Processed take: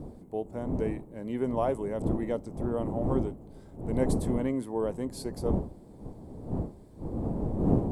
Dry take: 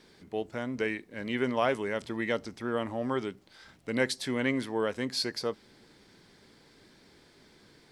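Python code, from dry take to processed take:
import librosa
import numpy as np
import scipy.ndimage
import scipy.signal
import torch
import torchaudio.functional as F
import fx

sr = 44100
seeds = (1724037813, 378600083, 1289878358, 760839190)

y = fx.dmg_wind(x, sr, seeds[0], corner_hz=280.0, level_db=-33.0)
y = fx.band_shelf(y, sr, hz=2800.0, db=-16.0, octaves=2.5)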